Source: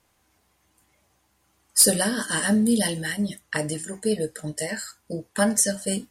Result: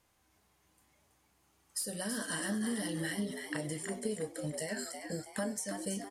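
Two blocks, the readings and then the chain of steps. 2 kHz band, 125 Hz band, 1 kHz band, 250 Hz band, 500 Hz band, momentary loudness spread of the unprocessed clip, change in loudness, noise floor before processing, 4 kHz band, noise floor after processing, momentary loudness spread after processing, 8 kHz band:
-11.5 dB, -10.5 dB, -12.0 dB, -12.5 dB, -12.0 dB, 13 LU, -14.0 dB, -68 dBFS, -14.0 dB, -72 dBFS, 5 LU, -16.0 dB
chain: compression 12:1, threshold -28 dBFS, peak gain reduction 17 dB; frequency-shifting echo 327 ms, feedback 39%, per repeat +95 Hz, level -6.5 dB; harmonic-percussive split harmonic +4 dB; trim -8 dB

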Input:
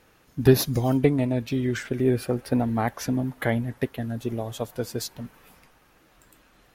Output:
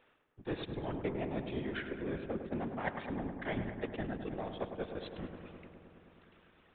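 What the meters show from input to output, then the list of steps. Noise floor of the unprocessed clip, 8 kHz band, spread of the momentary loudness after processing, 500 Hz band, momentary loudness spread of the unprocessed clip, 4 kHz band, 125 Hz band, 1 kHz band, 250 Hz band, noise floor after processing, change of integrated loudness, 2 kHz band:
-60 dBFS, under -40 dB, 11 LU, -13.5 dB, 12 LU, -14.0 dB, -17.5 dB, -9.5 dB, -14.5 dB, -69 dBFS, -14.5 dB, -8.5 dB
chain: bass shelf 310 Hz -9.5 dB; reverse; compression 6:1, threshold -39 dBFS, peak gain reduction 22 dB; reverse; power-law waveshaper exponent 1.4; whisper effect; on a send: filtered feedback delay 104 ms, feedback 82%, low-pass 2.3 kHz, level -8.5 dB; on the sum: resampled via 8 kHz; trim +7.5 dB

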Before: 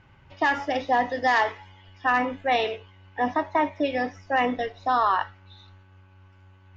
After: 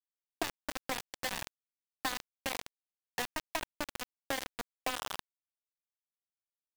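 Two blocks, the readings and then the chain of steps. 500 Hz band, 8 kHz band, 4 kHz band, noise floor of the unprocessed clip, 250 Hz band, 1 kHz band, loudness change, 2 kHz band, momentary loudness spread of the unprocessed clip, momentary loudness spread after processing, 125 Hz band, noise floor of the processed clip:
-16.5 dB, no reading, -4.5 dB, -54 dBFS, -16.0 dB, -18.5 dB, -14.0 dB, -14.0 dB, 7 LU, 6 LU, -11.0 dB, under -85 dBFS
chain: early reflections 22 ms -18 dB, 46 ms -13 dB, 68 ms -6.5 dB; compression 10:1, threshold -34 dBFS, peak gain reduction 18 dB; bit crusher 5-bit

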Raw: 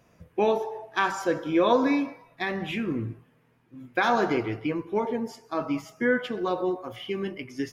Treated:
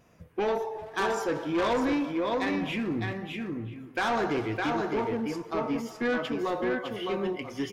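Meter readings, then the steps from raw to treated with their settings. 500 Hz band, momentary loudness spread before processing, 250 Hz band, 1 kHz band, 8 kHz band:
-2.5 dB, 11 LU, -1.5 dB, -2.5 dB, +0.5 dB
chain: on a send: delay 610 ms -5 dB; on the sum: wow and flutter 27 cents; saturation -22.5 dBFS, distortion -11 dB; speakerphone echo 380 ms, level -14 dB

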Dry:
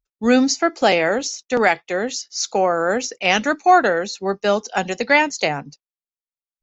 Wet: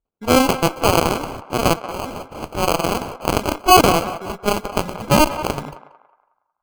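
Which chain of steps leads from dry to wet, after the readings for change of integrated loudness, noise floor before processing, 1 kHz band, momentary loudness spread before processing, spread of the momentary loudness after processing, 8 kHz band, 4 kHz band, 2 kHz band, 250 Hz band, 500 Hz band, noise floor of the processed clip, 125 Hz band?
+0.5 dB, under -85 dBFS, +1.0 dB, 9 LU, 16 LU, no reading, +2.0 dB, -5.5 dB, +0.5 dB, -1.0 dB, -75 dBFS, +10.5 dB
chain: in parallel at +1.5 dB: compression, threshold -23 dBFS, peak gain reduction 14.5 dB; on the sum: transient shaper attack -3 dB, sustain +8 dB; Chebyshev shaper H 6 -23 dB, 7 -13 dB, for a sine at 0 dBFS; sample-and-hold 24×; on a send: band-passed feedback delay 183 ms, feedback 41%, band-pass 1.1 kHz, level -10.5 dB; on the sum: tape noise reduction on one side only decoder only; trim -1.5 dB

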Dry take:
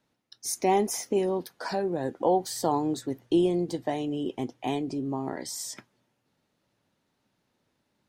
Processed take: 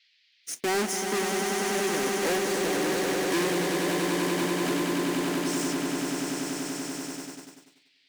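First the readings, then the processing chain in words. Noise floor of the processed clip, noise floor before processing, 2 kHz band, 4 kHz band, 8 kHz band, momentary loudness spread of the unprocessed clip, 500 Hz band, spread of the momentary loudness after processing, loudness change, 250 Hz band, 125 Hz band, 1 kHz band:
-65 dBFS, -77 dBFS, +13.5 dB, +8.5 dB, +5.5 dB, 9 LU, +0.5 dB, 8 LU, +1.5 dB, +1.5 dB, +1.0 dB, -0.5 dB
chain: square wave that keeps the level; rotary cabinet horn 0.85 Hz; graphic EQ 125/2000/8000 Hz -10/+4/+4 dB; on a send: echo with a slow build-up 96 ms, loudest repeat 8, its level -8 dB; on the sum: word length cut 8-bit, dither none; gate -32 dBFS, range -38 dB; overload inside the chain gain 19 dB; resonant low shelf 110 Hz -10 dB, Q 1.5; band noise 1.9–4.8 kHz -61 dBFS; trim -4.5 dB

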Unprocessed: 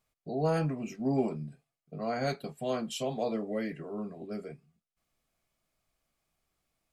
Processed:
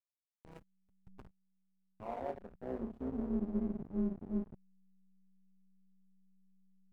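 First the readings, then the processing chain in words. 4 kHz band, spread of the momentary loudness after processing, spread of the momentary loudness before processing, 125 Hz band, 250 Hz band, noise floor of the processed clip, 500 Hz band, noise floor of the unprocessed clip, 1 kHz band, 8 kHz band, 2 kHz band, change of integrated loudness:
under -25 dB, 14 LU, 12 LU, -11.5 dB, -4.0 dB, under -85 dBFS, -11.5 dB, under -85 dBFS, -11.0 dB, under -30 dB, under -15 dB, -5.5 dB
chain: small resonant body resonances 210/980/2200 Hz, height 10 dB, ringing for 35 ms; dynamic bell 110 Hz, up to -7 dB, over -44 dBFS, Q 1.5; in parallel at 0 dB: compression 12:1, threshold -34 dBFS, peak gain reduction 14.5 dB; on the sum: Schroeder reverb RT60 0.76 s, combs from 31 ms, DRR 5.5 dB; wavefolder -16 dBFS; band-pass sweep 2.6 kHz -> 200 Hz, 0.99–3.36 s; hysteresis with a dead band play -30.5 dBFS; peaking EQ 4.5 kHz -7.5 dB 2.2 oct; AM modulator 190 Hz, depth 60%; trim -3.5 dB

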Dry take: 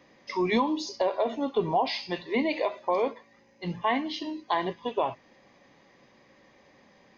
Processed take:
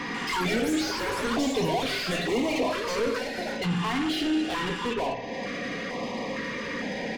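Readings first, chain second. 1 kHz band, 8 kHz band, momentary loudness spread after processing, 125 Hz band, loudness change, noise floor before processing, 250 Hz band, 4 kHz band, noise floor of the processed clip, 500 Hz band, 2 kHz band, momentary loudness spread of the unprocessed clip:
-1.5 dB, no reading, 6 LU, +7.0 dB, +1.0 dB, -60 dBFS, +4.0 dB, +6.0 dB, -34 dBFS, 0.0 dB, +6.5 dB, 8 LU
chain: peaking EQ 110 Hz +9.5 dB 1.8 oct; hum notches 60/120 Hz; comb 4.2 ms, depth 53%; compression 2.5:1, threshold -45 dBFS, peak gain reduction 20 dB; overdrive pedal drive 34 dB, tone 1.8 kHz, clips at -25.5 dBFS; spring tank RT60 1 s, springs 51 ms, chirp 65 ms, DRR 8.5 dB; ever faster or slower copies 143 ms, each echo +7 st, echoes 3, each echo -6 dB; step-sequenced notch 2.2 Hz 590–1500 Hz; trim +7 dB

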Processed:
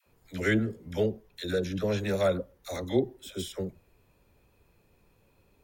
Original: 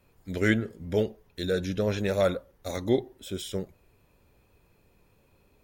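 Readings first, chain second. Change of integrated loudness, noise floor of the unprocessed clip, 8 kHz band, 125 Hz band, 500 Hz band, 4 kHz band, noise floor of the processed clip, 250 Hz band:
-1.5 dB, -65 dBFS, -1.5 dB, -1.5 dB, -1.5 dB, -1.5 dB, -67 dBFS, -1.5 dB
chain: phase dispersion lows, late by 65 ms, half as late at 580 Hz; trim -1.5 dB

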